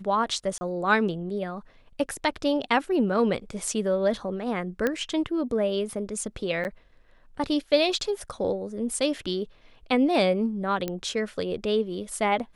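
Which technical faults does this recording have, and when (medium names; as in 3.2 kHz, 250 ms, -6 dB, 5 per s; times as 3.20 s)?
0.58–0.61 s: dropout 30 ms
4.87 s: pop -12 dBFS
6.64–6.65 s: dropout 9.6 ms
10.88 s: pop -15 dBFS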